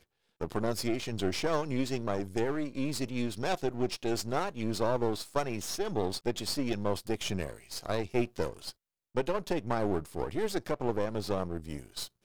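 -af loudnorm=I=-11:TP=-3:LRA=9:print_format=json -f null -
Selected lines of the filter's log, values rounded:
"input_i" : "-33.5",
"input_tp" : "-14.2",
"input_lra" : "1.5",
"input_thresh" : "-43.6",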